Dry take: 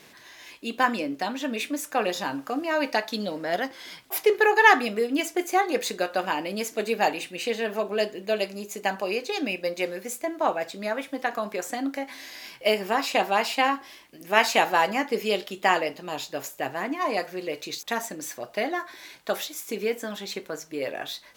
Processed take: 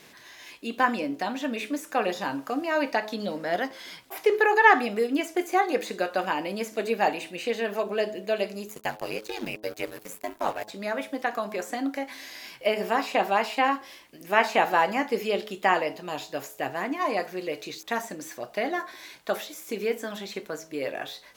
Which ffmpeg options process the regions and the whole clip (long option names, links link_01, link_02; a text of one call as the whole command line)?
ffmpeg -i in.wav -filter_complex "[0:a]asettb=1/sr,asplit=3[link_01][link_02][link_03];[link_01]atrim=end=8.684[link_04];[link_02]atrim=start=8.68:end=10.68,asetpts=PTS-STARTPTS,afade=type=in:duration=0.004:curve=qsin,afade=type=out:start_time=1.996:duration=0.004:curve=qsin,aemphasis=mode=production:type=50kf,aeval=exprs='sgn(val(0))*max(abs(val(0))-0.0141,0)':channel_layout=same,aeval=exprs='val(0)*sin(2*PI*50*n/s)':channel_layout=same[link_05];[link_03]atrim=start=10.676[link_06];[link_04][link_05]acrossfade=duration=0.004:curve1=hsin:curve2=qsin[link_07];[link_07][link_06]acrossfade=duration=0.004:curve1=qsin:curve2=hsin,acrossover=split=2500[link_08][link_09];[link_09]acompressor=threshold=-38dB:ratio=4:attack=1:release=60[link_10];[link_08][link_10]amix=inputs=2:normalize=0,bandreject=frequency=106.9:width_type=h:width=4,bandreject=frequency=213.8:width_type=h:width=4,bandreject=frequency=320.7:width_type=h:width=4,bandreject=frequency=427.6:width_type=h:width=4,bandreject=frequency=534.5:width_type=h:width=4,bandreject=frequency=641.4:width_type=h:width=4,bandreject=frequency=748.3:width_type=h:width=4,bandreject=frequency=855.2:width_type=h:width=4,bandreject=frequency=962.1:width_type=h:width=4,bandreject=frequency=1069:width_type=h:width=4" out.wav